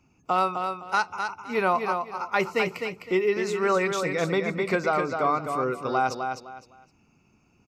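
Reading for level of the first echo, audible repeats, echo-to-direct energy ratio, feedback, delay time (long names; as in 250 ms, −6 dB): −6.0 dB, 3, −5.5 dB, 25%, 256 ms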